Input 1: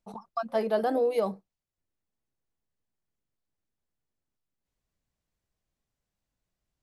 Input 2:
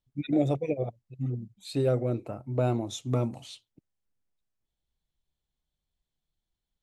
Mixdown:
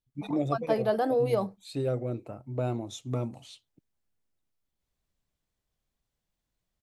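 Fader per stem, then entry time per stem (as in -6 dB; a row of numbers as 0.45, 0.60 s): 0.0, -4.0 dB; 0.15, 0.00 s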